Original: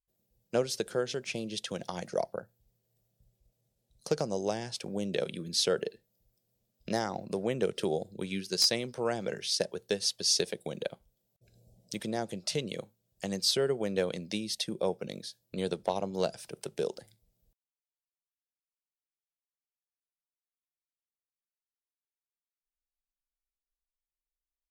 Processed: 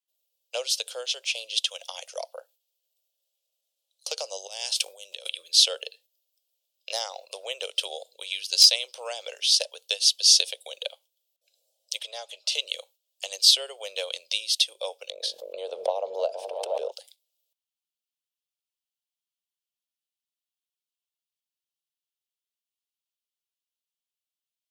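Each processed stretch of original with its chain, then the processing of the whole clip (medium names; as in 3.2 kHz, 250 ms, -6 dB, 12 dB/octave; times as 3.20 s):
1.67–2.22 s: high-pass 540 Hz 6 dB/octave + peaking EQ 4.3 kHz -8 dB 0.41 oct
4.47–5.29 s: compressor with a negative ratio -40 dBFS + treble shelf 7.1 kHz +11 dB
11.99–12.52 s: high-pass 660 Hz 6 dB/octave + treble shelf 5.1 kHz -10 dB + comb 4.8 ms, depth 49%
15.10–16.92 s: FFT filter 140 Hz 0 dB, 260 Hz +8 dB, 660 Hz +6 dB, 1.3 kHz -4 dB, 3.2 kHz -16 dB, 12 kHz -22 dB + delay with an opening low-pass 158 ms, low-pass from 200 Hz, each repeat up 1 oct, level -6 dB + swell ahead of each attack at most 24 dB/s
whole clip: gate -55 dBFS, range -6 dB; elliptic high-pass 530 Hz, stop band 50 dB; resonant high shelf 2.3 kHz +9 dB, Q 3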